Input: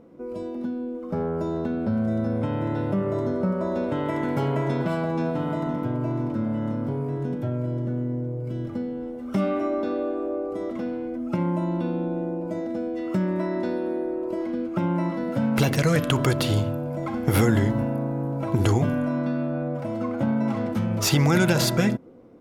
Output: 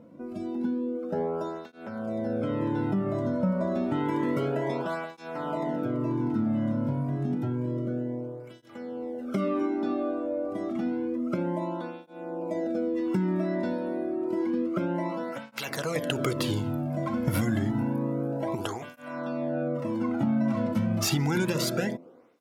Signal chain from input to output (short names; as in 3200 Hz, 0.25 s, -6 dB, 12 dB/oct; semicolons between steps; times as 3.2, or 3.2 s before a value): de-hum 85.18 Hz, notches 8; compressor 4:1, threshold -23 dBFS, peak gain reduction 7.5 dB; tape flanging out of phase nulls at 0.29 Hz, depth 2.6 ms; gain +2 dB